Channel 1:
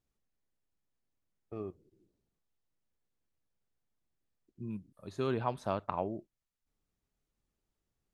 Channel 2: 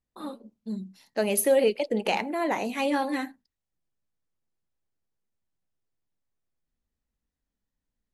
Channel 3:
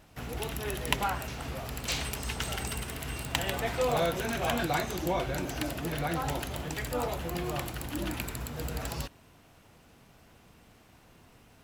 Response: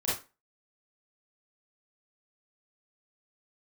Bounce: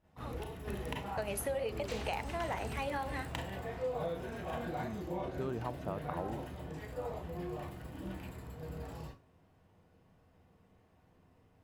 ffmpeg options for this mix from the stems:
-filter_complex "[0:a]adelay=200,volume=0.708[s0];[1:a]bandreject=f=60:t=h:w=6,bandreject=f=120:t=h:w=6,bandreject=f=180:t=h:w=6,bandreject=f=240:t=h:w=6,bandreject=f=300:t=h:w=6,bandreject=f=360:t=h:w=6,bandreject=f=420:t=h:w=6,bandreject=f=480:t=h:w=6,bandreject=f=540:t=h:w=6,agate=range=0.447:threshold=0.00631:ratio=16:detection=peak,equalizer=f=250:t=o:w=1.9:g=-14.5,volume=0.841,asplit=2[s1][s2];[2:a]volume=0.398,asplit=2[s3][s4];[s4]volume=0.398[s5];[s2]apad=whole_len=513301[s6];[s3][s6]sidechaingate=range=0.0224:threshold=0.00141:ratio=16:detection=peak[s7];[3:a]atrim=start_sample=2205[s8];[s5][s8]afir=irnorm=-1:irlink=0[s9];[s0][s1][s7][s9]amix=inputs=4:normalize=0,highshelf=f=2200:g=-11.5,acompressor=threshold=0.0251:ratio=6"

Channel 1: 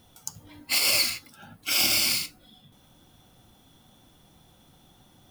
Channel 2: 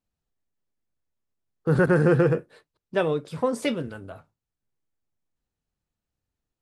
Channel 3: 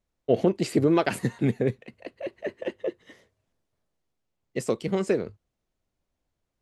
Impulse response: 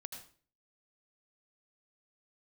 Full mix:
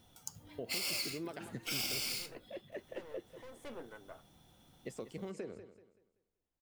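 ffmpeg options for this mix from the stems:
-filter_complex "[0:a]equalizer=f=12000:w=1.9:g=-2.5,bandreject=f=1100:w=20,volume=0.473[s0];[1:a]acrossover=split=300 2400:gain=0.0891 1 0.112[s1][s2][s3];[s1][s2][s3]amix=inputs=3:normalize=0,aexciter=amount=5.1:drive=6.7:freq=6000,aeval=exprs='(tanh(44.7*val(0)+0.75)-tanh(0.75))/44.7':c=same,volume=0.531,afade=t=in:st=3.58:d=0.25:silence=0.281838[s4];[2:a]alimiter=limit=0.133:level=0:latency=1:release=306,adelay=300,volume=0.251,asplit=2[s5][s6];[s6]volume=0.211,aecho=0:1:191|382|573|764|955:1|0.32|0.102|0.0328|0.0105[s7];[s0][s4][s5][s7]amix=inputs=4:normalize=0,acompressor=threshold=0.01:ratio=2"

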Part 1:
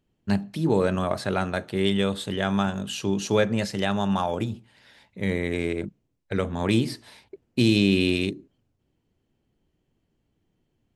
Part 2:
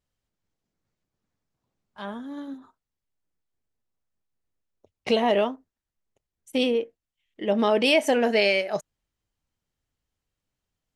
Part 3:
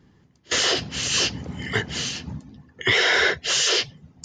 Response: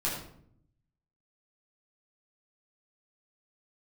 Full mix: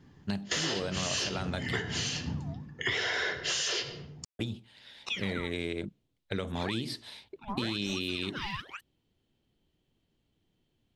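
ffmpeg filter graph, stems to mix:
-filter_complex "[0:a]equalizer=f=3600:t=o:w=0.81:g=10,alimiter=limit=0.266:level=0:latency=1,volume=0.668,asplit=3[s0][s1][s2];[s0]atrim=end=1.77,asetpts=PTS-STARTPTS,afade=t=out:st=1.766:d=0.004:c=hsin[s3];[s1]atrim=start=1.77:end=4.39,asetpts=PTS-STARTPTS,volume=0[s4];[s2]atrim=start=4.39,asetpts=PTS-STARTPTS,afade=t=in:d=0.004:c=hsin[s5];[s3][s4][s5]concat=n=3:v=0:a=1[s6];[1:a]highpass=350,aphaser=in_gain=1:out_gain=1:delay=3.4:decay=0.71:speed=0.79:type=sinusoidal,aeval=exprs='val(0)*sin(2*PI*1900*n/s+1900*0.8/1*sin(2*PI*1*n/s))':c=same,volume=0.2[s7];[2:a]volume=0.668,asplit=2[s8][s9];[s9]volume=0.282[s10];[3:a]atrim=start_sample=2205[s11];[s10][s11]afir=irnorm=-1:irlink=0[s12];[s6][s7][s8][s12]amix=inputs=4:normalize=0,acompressor=threshold=0.0355:ratio=6"

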